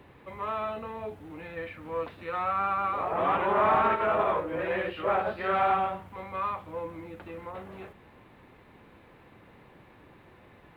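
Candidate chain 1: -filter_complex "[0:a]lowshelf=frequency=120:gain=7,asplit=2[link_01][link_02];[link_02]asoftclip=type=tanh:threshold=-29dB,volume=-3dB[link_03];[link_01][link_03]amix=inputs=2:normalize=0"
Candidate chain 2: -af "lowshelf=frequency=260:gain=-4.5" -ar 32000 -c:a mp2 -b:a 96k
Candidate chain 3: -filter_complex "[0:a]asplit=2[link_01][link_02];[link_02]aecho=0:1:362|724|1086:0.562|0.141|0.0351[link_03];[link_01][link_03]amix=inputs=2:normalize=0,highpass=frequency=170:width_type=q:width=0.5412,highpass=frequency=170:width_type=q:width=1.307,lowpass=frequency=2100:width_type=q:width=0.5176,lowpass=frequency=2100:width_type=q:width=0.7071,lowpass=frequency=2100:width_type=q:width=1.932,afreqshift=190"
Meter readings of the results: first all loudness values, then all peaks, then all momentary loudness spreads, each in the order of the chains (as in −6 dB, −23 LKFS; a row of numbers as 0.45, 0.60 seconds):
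−26.5, −29.5, −27.5 LKFS; −13.0, −15.5, −12.5 dBFS; 15, 18, 17 LU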